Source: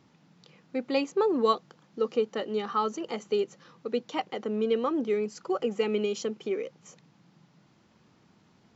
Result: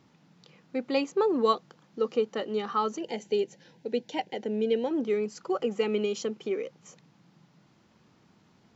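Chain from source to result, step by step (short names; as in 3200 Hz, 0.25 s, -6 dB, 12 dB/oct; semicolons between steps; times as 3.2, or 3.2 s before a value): 2.98–4.91 Butterworth band-stop 1200 Hz, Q 2.1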